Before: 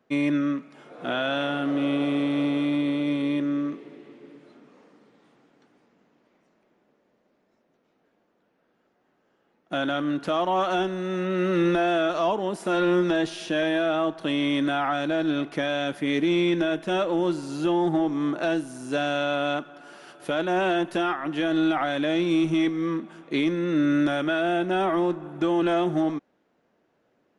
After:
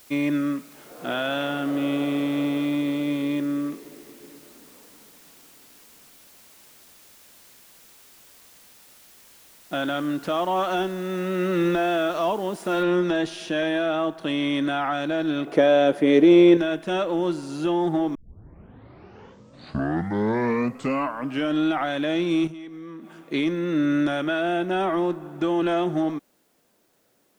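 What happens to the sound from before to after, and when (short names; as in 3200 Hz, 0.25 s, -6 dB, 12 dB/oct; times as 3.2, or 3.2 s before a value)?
12.83 noise floor step -52 dB -69 dB
15.47–16.57 bell 480 Hz +13.5 dB 1.5 oct
18.15 tape start 3.56 s
22.47–23.22 compressor 8:1, threshold -36 dBFS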